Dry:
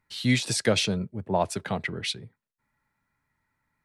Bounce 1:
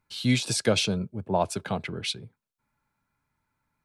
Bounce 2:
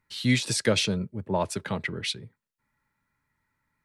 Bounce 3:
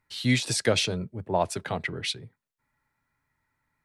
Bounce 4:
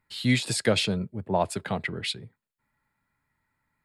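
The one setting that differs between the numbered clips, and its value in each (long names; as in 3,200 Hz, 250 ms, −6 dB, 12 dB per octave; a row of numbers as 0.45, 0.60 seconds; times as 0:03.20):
notch filter, centre frequency: 1,900, 720, 200, 5,900 Hertz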